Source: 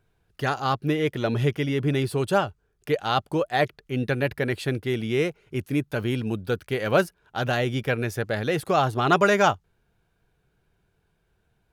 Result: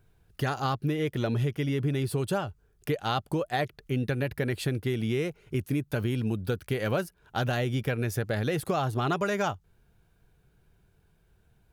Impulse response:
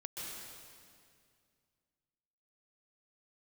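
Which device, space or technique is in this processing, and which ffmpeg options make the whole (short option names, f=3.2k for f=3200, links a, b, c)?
ASMR close-microphone chain: -af "lowshelf=f=220:g=7,acompressor=threshold=-25dB:ratio=6,highshelf=f=8.1k:g=7.5"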